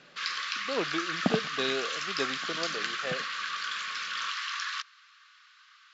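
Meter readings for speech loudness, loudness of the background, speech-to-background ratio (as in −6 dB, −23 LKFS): −34.5 LKFS, −32.5 LKFS, −2.0 dB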